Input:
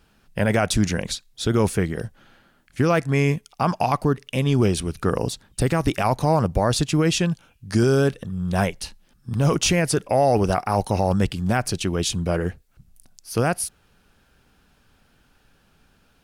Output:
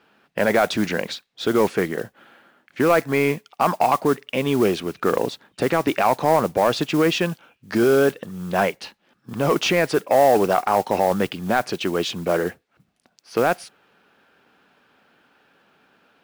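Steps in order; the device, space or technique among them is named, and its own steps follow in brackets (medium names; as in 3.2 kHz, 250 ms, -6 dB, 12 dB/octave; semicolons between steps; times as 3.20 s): carbon microphone (band-pass 300–3000 Hz; saturation -12 dBFS, distortion -19 dB; modulation noise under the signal 21 dB); trim +5.5 dB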